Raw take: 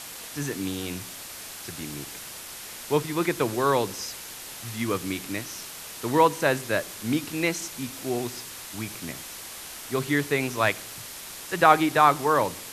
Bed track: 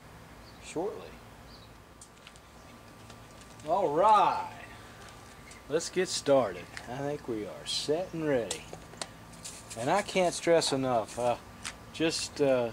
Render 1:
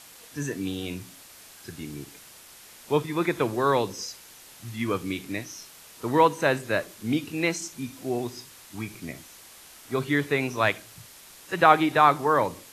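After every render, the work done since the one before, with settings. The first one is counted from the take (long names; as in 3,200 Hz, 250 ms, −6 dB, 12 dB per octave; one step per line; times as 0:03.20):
noise reduction from a noise print 9 dB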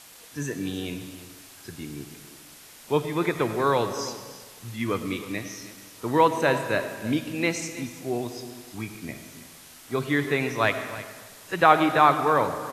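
single-tap delay 318 ms −15.5 dB
comb and all-pass reverb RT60 1.6 s, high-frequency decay 0.75×, pre-delay 50 ms, DRR 9.5 dB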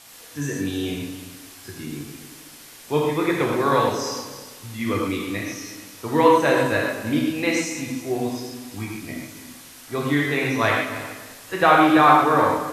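reverb whose tail is shaped and stops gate 160 ms flat, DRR −2 dB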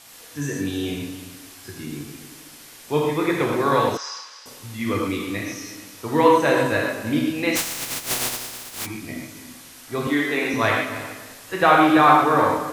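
0:03.97–0:04.46: Chebyshev band-pass filter 1,300–5,200 Hz
0:07.55–0:08.85: compressing power law on the bin magnitudes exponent 0.16
0:10.07–0:10.54: Butterworth high-pass 170 Hz 48 dB per octave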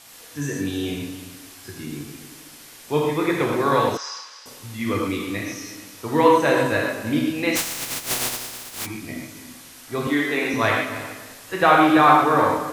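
no processing that can be heard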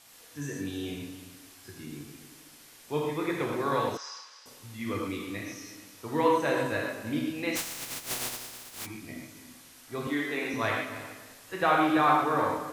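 level −9 dB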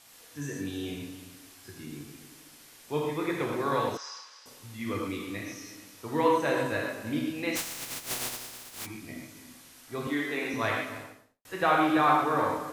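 0:10.89–0:11.45: fade out and dull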